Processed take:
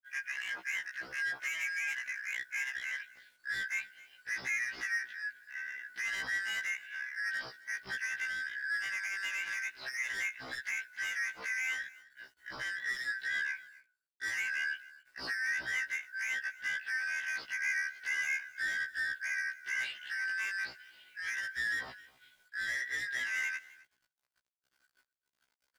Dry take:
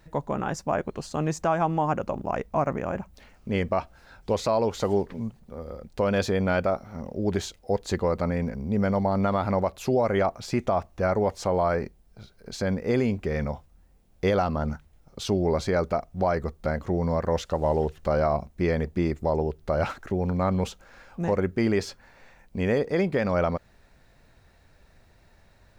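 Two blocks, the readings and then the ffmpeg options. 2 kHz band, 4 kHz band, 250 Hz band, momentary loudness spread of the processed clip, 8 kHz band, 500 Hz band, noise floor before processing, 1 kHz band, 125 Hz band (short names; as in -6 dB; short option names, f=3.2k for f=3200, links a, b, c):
+6.5 dB, -2.5 dB, -35.5 dB, 8 LU, -2.0 dB, -36.0 dB, -58 dBFS, -23.5 dB, under -35 dB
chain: -filter_complex "[0:a]afftfilt=real='real(if(lt(b,272),68*(eq(floor(b/68),0)*3+eq(floor(b/68),1)*0+eq(floor(b/68),2)*1+eq(floor(b/68),3)*2)+mod(b,68),b),0)':imag='imag(if(lt(b,272),68*(eq(floor(b/68),0)*3+eq(floor(b/68),1)*0+eq(floor(b/68),2)*1+eq(floor(b/68),3)*2)+mod(b,68),b),0)':win_size=2048:overlap=0.75,aresample=11025,aresample=44100,lowshelf=f=82:g=-10,agate=range=-33dB:threshold=-43dB:ratio=3:detection=peak,asplit=2[a][b];[b]acompressor=threshold=-33dB:ratio=6,volume=2dB[c];[a][c]amix=inputs=2:normalize=0,acrusher=bits=9:mix=0:aa=0.000001,asoftclip=type=tanh:threshold=-22.5dB,equalizer=f=210:t=o:w=0.35:g=-2.5,aecho=1:1:262:0.0841,afftfilt=real='re*1.73*eq(mod(b,3),0)':imag='im*1.73*eq(mod(b,3),0)':win_size=2048:overlap=0.75,volume=-7dB"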